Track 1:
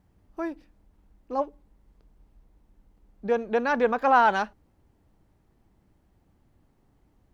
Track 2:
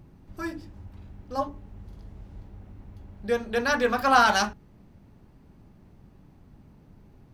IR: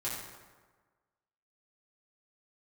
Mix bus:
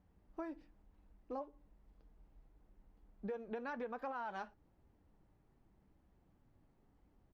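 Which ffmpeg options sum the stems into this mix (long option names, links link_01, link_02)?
-filter_complex "[0:a]alimiter=limit=-18.5dB:level=0:latency=1:release=224,volume=-2.5dB[link_01];[1:a]highpass=frequency=420:width=0.5412,highpass=frequency=420:width=1.3066,acompressor=threshold=-25dB:ratio=6,adelay=5.7,volume=-18.5dB[link_02];[link_01][link_02]amix=inputs=2:normalize=0,highshelf=frequency=4800:gain=-11,flanger=delay=3.8:depth=3.6:regen=-63:speed=1:shape=sinusoidal,acompressor=threshold=-40dB:ratio=6"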